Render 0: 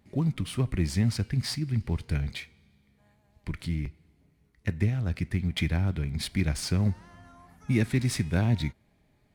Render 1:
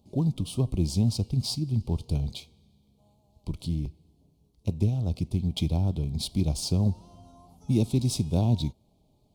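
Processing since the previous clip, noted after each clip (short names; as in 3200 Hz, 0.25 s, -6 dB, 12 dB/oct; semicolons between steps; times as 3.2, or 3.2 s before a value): Chebyshev band-stop 830–3600 Hz, order 2; gain +2 dB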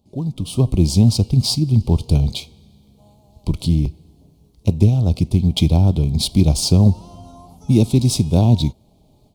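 AGC gain up to 13 dB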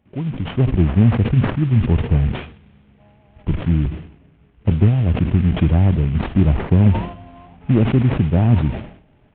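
CVSD 16 kbps; sustainer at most 98 dB/s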